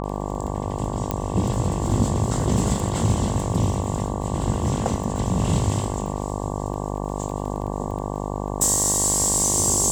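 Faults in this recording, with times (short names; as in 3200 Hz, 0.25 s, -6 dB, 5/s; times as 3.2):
buzz 50 Hz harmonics 23 -28 dBFS
crackle 11/s -30 dBFS
1.11 pop -9 dBFS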